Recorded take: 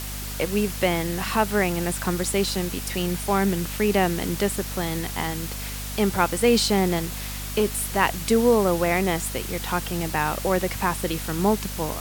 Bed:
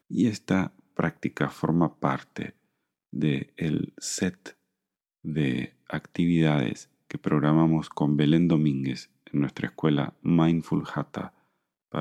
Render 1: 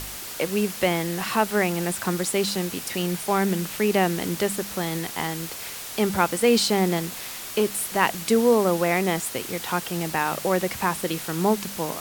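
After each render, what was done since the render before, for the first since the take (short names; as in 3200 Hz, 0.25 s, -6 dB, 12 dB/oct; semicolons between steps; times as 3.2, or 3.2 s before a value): de-hum 50 Hz, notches 5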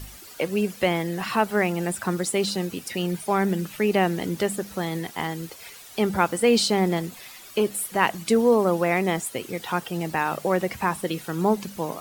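denoiser 12 dB, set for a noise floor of -36 dBFS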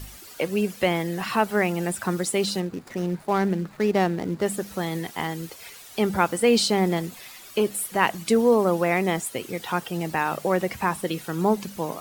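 2.6–4.46 median filter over 15 samples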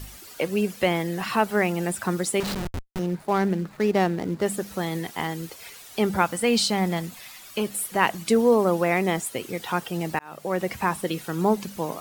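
2.4–2.99 Schmitt trigger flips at -28 dBFS; 6.22–7.74 bell 390 Hz -7 dB; 10.19–10.71 fade in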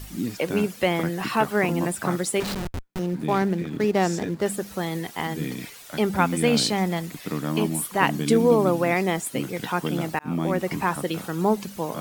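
add bed -5.5 dB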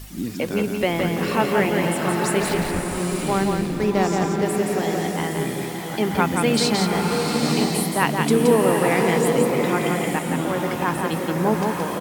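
echo 0.172 s -4.5 dB; bloom reverb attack 0.92 s, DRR 2 dB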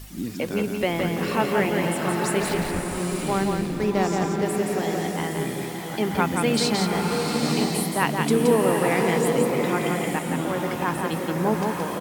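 gain -2.5 dB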